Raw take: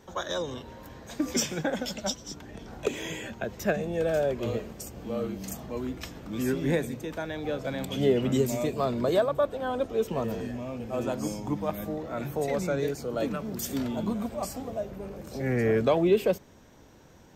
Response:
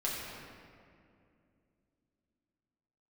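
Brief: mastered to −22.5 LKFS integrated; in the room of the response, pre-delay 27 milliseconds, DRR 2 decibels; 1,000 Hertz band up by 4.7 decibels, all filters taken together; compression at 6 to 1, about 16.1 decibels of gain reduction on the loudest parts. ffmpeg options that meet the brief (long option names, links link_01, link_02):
-filter_complex "[0:a]equalizer=frequency=1000:width_type=o:gain=6.5,acompressor=threshold=-35dB:ratio=6,asplit=2[link_01][link_02];[1:a]atrim=start_sample=2205,adelay=27[link_03];[link_02][link_03]afir=irnorm=-1:irlink=0,volume=-7.5dB[link_04];[link_01][link_04]amix=inputs=2:normalize=0,volume=14dB"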